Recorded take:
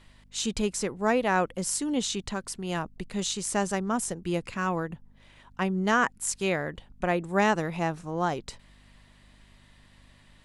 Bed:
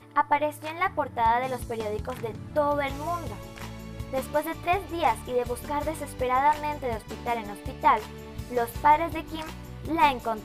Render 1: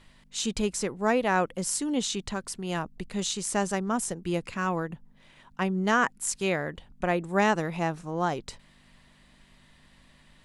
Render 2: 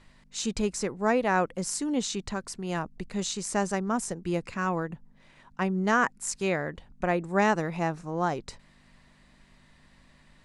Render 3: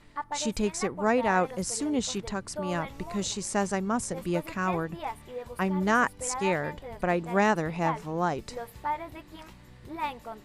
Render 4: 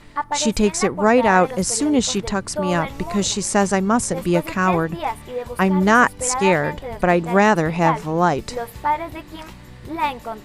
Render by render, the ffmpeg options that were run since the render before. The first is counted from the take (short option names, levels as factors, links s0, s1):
-af "bandreject=f=50:t=h:w=4,bandreject=f=100:t=h:w=4"
-af "lowpass=8500,equalizer=f=3200:w=2.9:g=-6"
-filter_complex "[1:a]volume=0.266[s0];[0:a][s0]amix=inputs=2:normalize=0"
-af "volume=3.35,alimiter=limit=0.708:level=0:latency=1"